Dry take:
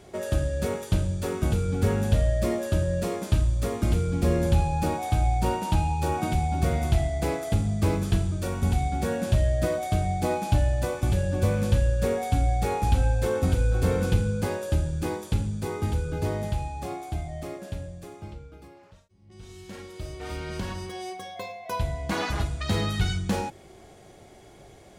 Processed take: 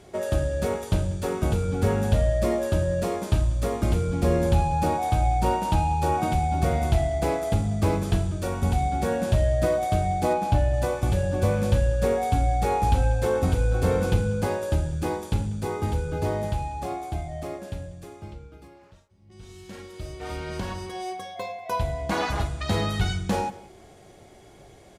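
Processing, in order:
0:10.33–0:10.74: high-shelf EQ 3,900 Hz −6 dB
slap from a distant wall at 33 metres, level −19 dB
dynamic equaliser 750 Hz, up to +5 dB, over −42 dBFS, Q 1
Ogg Vorbis 128 kbit/s 32,000 Hz

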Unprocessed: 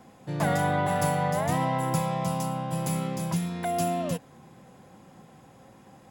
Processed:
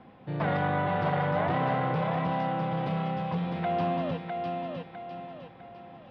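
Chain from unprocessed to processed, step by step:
inverse Chebyshev low-pass filter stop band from 6,700 Hz, stop band 40 dB
on a send: feedback echo with a high-pass in the loop 654 ms, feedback 42%, high-pass 190 Hz, level −4.5 dB
on the sum: saturating transformer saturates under 580 Hz

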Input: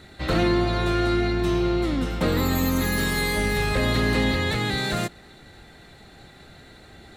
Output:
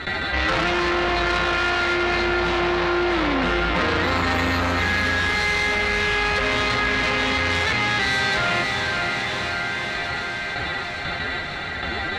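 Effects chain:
parametric band 80 Hz +5 dB 0.34 octaves
brickwall limiter −15.5 dBFS, peak gain reduction 4 dB
phase-vocoder stretch with locked phases 1.7×
noise gate with hold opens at −37 dBFS
low-pass filter 2,200 Hz 12 dB per octave
soft clipping −27.5 dBFS, distortion −9 dB
tilt shelving filter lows −9 dB, about 780 Hz
speech leveller within 5 dB
feedback delay with all-pass diffusion 502 ms, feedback 54%, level −9 dB
envelope flattener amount 70%
level +8 dB

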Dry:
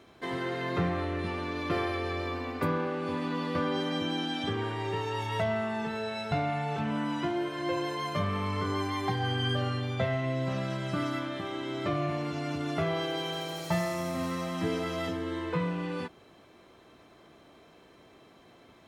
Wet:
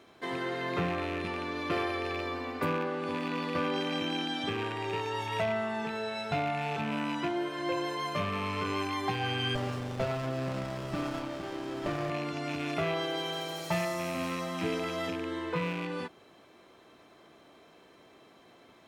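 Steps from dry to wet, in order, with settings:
loose part that buzzes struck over −34 dBFS, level −29 dBFS
low-shelf EQ 130 Hz −10 dB
0:09.55–0:12.10: windowed peak hold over 17 samples

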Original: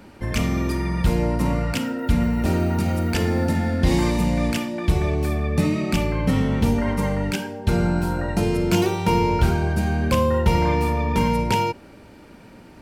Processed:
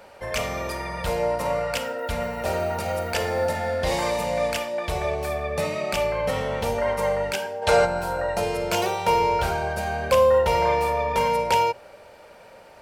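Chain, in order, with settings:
low shelf with overshoot 400 Hz −10.5 dB, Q 3
mains-hum notches 60/120/180 Hz
gain on a spectral selection 0:07.62–0:07.85, 410–10,000 Hz +8 dB

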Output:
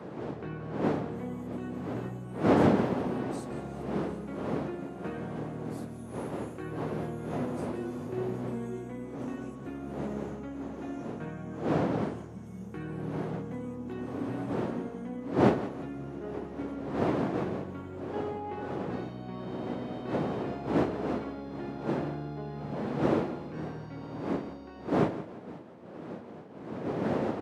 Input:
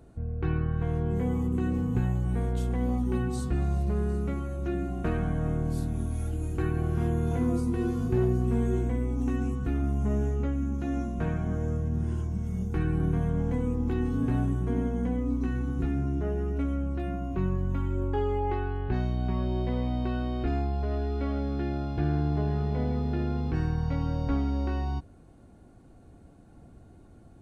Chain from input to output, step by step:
fade-out on the ending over 4.86 s
wind on the microphone 390 Hz −25 dBFS
Bessel high-pass filter 170 Hz, order 4
on a send: repeating echo 172 ms, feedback 33%, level −14 dB
on the sum: level −6.5 dB

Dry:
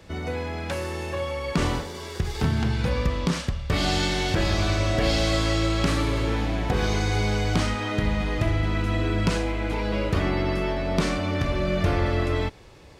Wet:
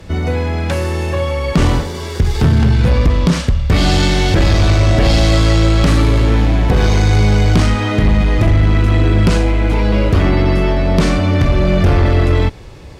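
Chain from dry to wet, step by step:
low-shelf EQ 220 Hz +8 dB
sine wavefolder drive 5 dB, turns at −5.5 dBFS

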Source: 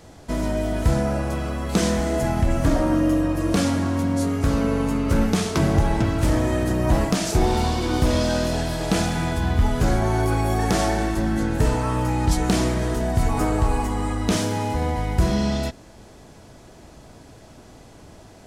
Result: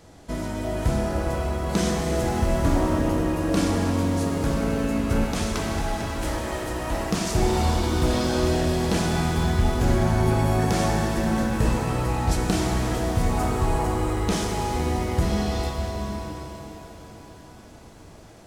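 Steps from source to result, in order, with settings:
0:05.24–0:07.11: parametric band 130 Hz −11.5 dB 2.8 octaves
reverb with rising layers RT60 4 s, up +7 semitones, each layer −8 dB, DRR 1.5 dB
level −4 dB

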